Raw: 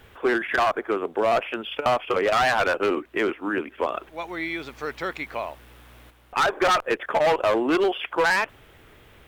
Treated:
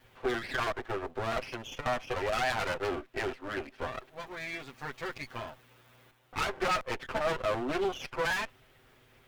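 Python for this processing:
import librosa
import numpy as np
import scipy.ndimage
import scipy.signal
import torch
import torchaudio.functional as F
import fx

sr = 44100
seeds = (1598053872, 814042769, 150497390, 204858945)

y = fx.lower_of_two(x, sr, delay_ms=7.8)
y = y * librosa.db_to_amplitude(-8.0)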